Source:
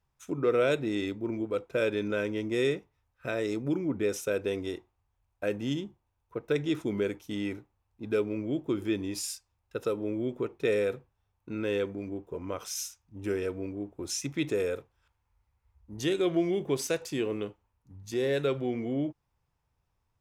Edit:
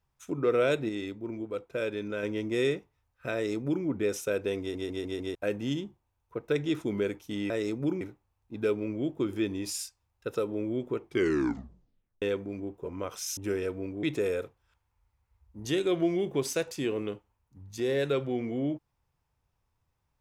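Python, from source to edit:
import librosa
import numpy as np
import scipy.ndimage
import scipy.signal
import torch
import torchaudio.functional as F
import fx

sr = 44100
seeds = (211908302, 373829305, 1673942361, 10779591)

y = fx.edit(x, sr, fx.clip_gain(start_s=0.89, length_s=1.34, db=-4.0),
    fx.duplicate(start_s=3.34, length_s=0.51, to_s=7.5),
    fx.stutter_over(start_s=4.6, slice_s=0.15, count=5),
    fx.tape_stop(start_s=10.51, length_s=1.2),
    fx.cut(start_s=12.86, length_s=0.31),
    fx.cut(start_s=13.83, length_s=0.54), tone=tone)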